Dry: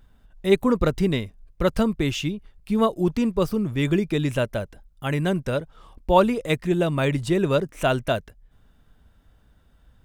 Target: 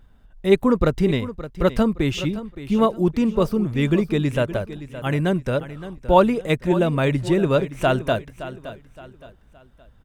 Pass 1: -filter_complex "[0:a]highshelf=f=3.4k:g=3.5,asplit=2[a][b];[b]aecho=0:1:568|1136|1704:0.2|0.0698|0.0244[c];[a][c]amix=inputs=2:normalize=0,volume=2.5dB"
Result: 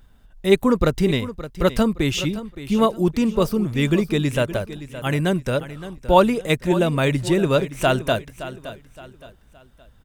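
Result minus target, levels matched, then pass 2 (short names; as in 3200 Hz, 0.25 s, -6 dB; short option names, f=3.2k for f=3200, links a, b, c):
8000 Hz band +7.0 dB
-filter_complex "[0:a]highshelf=f=3.4k:g=-5.5,asplit=2[a][b];[b]aecho=0:1:568|1136|1704:0.2|0.0698|0.0244[c];[a][c]amix=inputs=2:normalize=0,volume=2.5dB"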